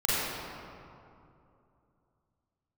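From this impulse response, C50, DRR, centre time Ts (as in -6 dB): -6.0 dB, -10.5 dB, 180 ms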